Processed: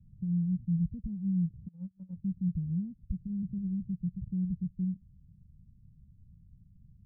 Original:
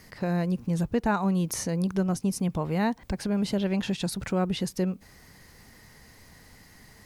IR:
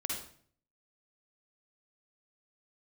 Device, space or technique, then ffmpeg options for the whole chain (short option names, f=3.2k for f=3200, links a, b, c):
the neighbour's flat through the wall: -filter_complex "[0:a]lowpass=f=150:w=0.5412,lowpass=f=150:w=1.3066,equalizer=f=180:t=o:w=0.41:g=5,asplit=3[a][b][c];[a]afade=t=out:st=1.67:d=0.02[d];[b]agate=range=-32dB:threshold=-27dB:ratio=16:detection=peak,afade=t=in:st=1.67:d=0.02,afade=t=out:st=2.16:d=0.02[e];[c]afade=t=in:st=2.16:d=0.02[f];[d][e][f]amix=inputs=3:normalize=0"